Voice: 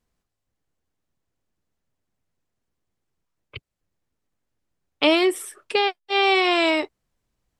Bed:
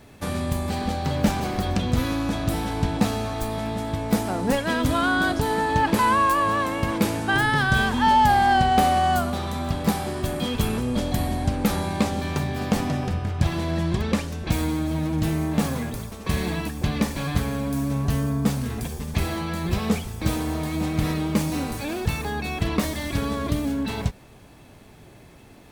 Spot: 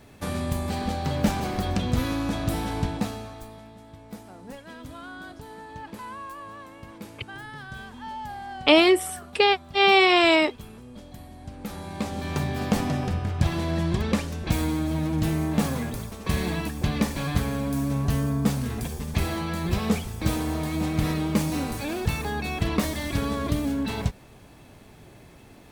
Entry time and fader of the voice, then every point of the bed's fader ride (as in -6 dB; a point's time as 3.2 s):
3.65 s, +1.5 dB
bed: 2.78 s -2 dB
3.72 s -19 dB
11.33 s -19 dB
12.41 s -1 dB